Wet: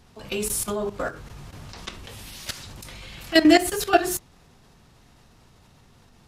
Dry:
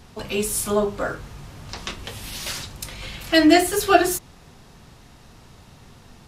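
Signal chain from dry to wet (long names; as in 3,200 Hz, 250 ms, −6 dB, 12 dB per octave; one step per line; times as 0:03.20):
output level in coarse steps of 14 dB
level +1.5 dB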